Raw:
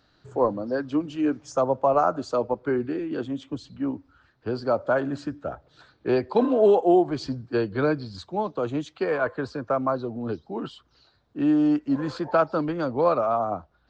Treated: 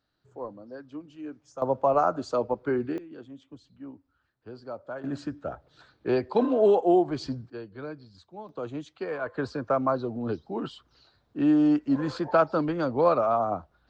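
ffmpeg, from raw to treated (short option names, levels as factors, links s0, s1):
-af "asetnsamples=n=441:p=0,asendcmd='1.62 volume volume -2dB;2.98 volume volume -14.5dB;5.04 volume volume -2.5dB;7.5 volume volume -15dB;8.49 volume volume -7.5dB;9.34 volume volume -0.5dB',volume=0.178"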